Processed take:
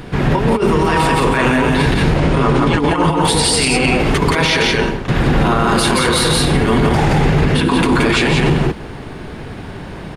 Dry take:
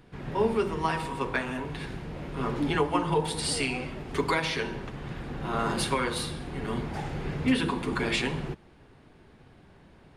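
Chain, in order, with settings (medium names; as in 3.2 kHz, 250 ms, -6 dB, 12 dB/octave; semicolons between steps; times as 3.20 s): 2.00–2.90 s: brick-wall FIR low-pass 10 kHz; compressor with a negative ratio -30 dBFS, ratio -0.5; 4.49–5.08 s: fade out; delay 174 ms -3 dB; loudness maximiser +25.5 dB; trim -4 dB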